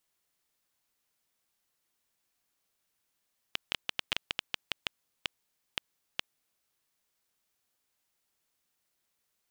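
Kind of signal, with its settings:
Geiger counter clicks 5.2 per second −11 dBFS 3.03 s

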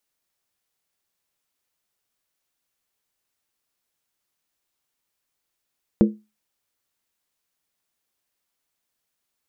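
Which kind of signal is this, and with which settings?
struck skin, lowest mode 213 Hz, decay 0.26 s, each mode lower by 5.5 dB, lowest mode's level −8.5 dB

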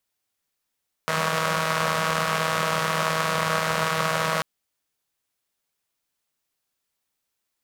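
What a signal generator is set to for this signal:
pulse-train model of a four-cylinder engine, steady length 3.34 s, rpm 4,800, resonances 180/590/1,100 Hz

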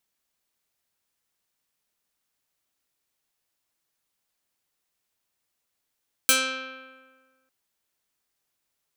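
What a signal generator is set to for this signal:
Karplus-Strong string C4, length 1.20 s, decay 1.55 s, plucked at 0.28, medium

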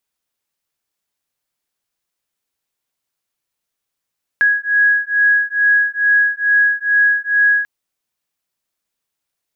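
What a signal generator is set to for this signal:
two tones that beat 1,660 Hz, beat 2.3 Hz, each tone −14.5 dBFS 3.24 s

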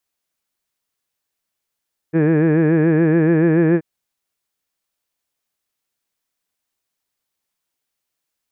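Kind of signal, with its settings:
vowel from formants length 1.68 s, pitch 156 Hz, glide +1 semitone, vibrato 7 Hz, F1 390 Hz, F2 1,700 Hz, F3 2,400 Hz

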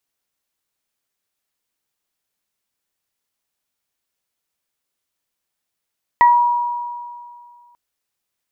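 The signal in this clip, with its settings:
harmonic partials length 1.54 s, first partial 961 Hz, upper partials −7 dB, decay 2.17 s, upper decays 0.23 s, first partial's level −6.5 dB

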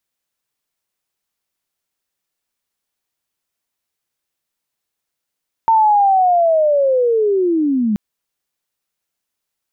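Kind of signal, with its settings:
glide linear 910 Hz → 200 Hz −8.5 dBFS → −13.5 dBFS 2.28 s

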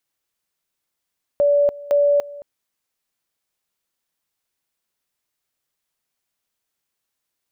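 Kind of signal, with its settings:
tone at two levels in turn 576 Hz −12.5 dBFS, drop 20 dB, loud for 0.29 s, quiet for 0.22 s, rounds 2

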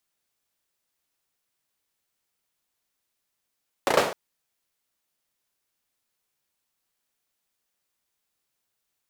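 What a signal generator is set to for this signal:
synth clap length 0.26 s, apart 34 ms, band 550 Hz, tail 0.49 s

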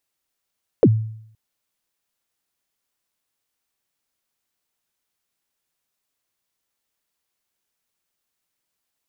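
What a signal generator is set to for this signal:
synth kick length 0.52 s, from 560 Hz, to 110 Hz, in 53 ms, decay 0.68 s, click off, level −6.5 dB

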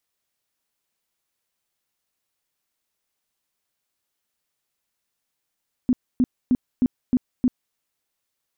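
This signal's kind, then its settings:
tone bursts 251 Hz, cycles 10, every 0.31 s, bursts 6, −14 dBFS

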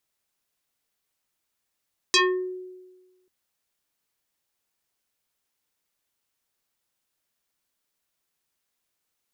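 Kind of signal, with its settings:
two-operator FM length 1.14 s, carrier 368 Hz, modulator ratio 3.93, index 5, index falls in 0.40 s exponential, decay 1.30 s, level −14 dB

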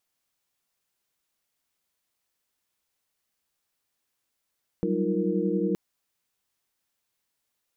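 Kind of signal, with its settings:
held notes F#3/G3/D#4/F4/A#4 sine, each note −29.5 dBFS 0.92 s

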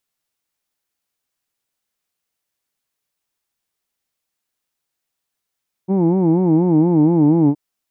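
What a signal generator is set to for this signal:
vowel by formant synthesis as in who'd, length 1.67 s, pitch 182 Hz, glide −3 semitones, vibrato 4.2 Hz, vibrato depth 1.45 semitones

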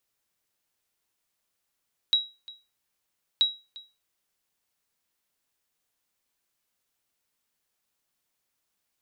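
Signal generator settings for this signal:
ping with an echo 3,860 Hz, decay 0.28 s, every 1.28 s, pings 2, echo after 0.35 s, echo −21.5 dB −14 dBFS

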